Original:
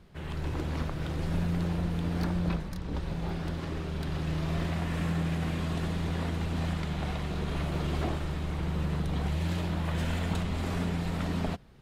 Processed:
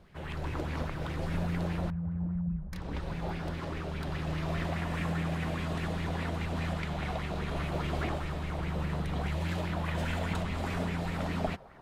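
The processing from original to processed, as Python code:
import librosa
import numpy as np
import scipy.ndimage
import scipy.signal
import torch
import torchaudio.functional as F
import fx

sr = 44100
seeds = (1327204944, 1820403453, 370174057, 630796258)

y = fx.spec_expand(x, sr, power=2.7, at=(1.9, 2.73))
y = fx.echo_wet_bandpass(y, sr, ms=509, feedback_pct=39, hz=750.0, wet_db=-16.0)
y = fx.bell_lfo(y, sr, hz=4.9, low_hz=570.0, high_hz=2400.0, db=10)
y = y * 10.0 ** (-3.0 / 20.0)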